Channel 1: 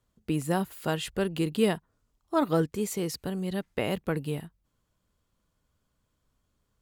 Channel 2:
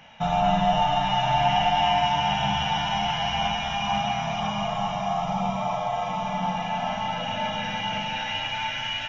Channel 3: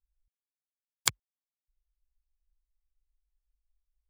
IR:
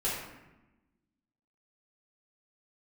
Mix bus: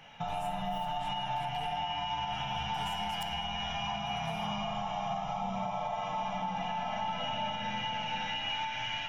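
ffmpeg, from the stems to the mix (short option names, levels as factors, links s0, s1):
-filter_complex "[0:a]highpass=f=700:w=0.5412,highpass=f=700:w=1.3066,acompressor=threshold=0.00631:ratio=6,volume=0.447,asplit=3[s0][s1][s2];[s0]atrim=end=3.44,asetpts=PTS-STARTPTS,afade=t=out:st=3.436:d=0.004:c=hsin[s3];[s1]atrim=start=3.44:end=3.97,asetpts=PTS-STARTPTS,volume=0[s4];[s2]atrim=start=3.97,asetpts=PTS-STARTPTS,afade=t=in:d=0.004:c=hsin[s5];[s3][s4][s5]concat=n=3:v=0:a=1,asplit=2[s6][s7];[s7]volume=0.473[s8];[1:a]acompressor=threshold=0.0631:ratio=6,volume=0.473,asplit=2[s9][s10];[s10]volume=0.447[s11];[2:a]acompressor=threshold=0.0158:ratio=6,adelay=2150,volume=0.531,asplit=2[s12][s13];[s13]volume=0.188[s14];[3:a]atrim=start_sample=2205[s15];[s8][s11][s14]amix=inputs=3:normalize=0[s16];[s16][s15]afir=irnorm=-1:irlink=0[s17];[s6][s9][s12][s17]amix=inputs=4:normalize=0,alimiter=level_in=1.19:limit=0.0631:level=0:latency=1:release=319,volume=0.841"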